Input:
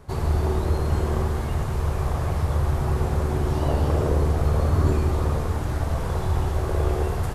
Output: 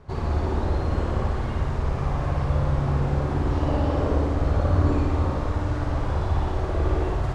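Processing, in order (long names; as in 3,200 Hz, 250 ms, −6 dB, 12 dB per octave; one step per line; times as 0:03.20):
high-frequency loss of the air 110 metres
flutter between parallel walls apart 9.8 metres, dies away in 0.95 s
level −1.5 dB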